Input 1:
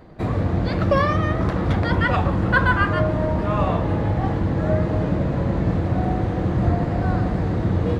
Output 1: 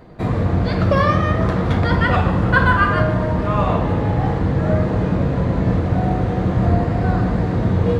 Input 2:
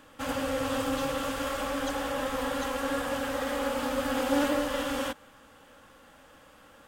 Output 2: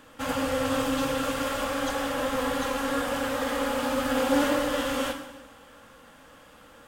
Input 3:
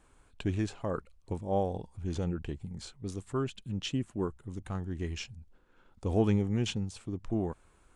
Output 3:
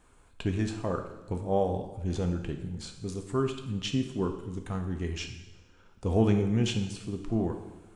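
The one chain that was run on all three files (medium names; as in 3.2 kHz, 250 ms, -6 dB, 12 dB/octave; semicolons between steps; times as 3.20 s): two-slope reverb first 0.96 s, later 2.5 s, from -18 dB, DRR 4.5 dB; trim +2 dB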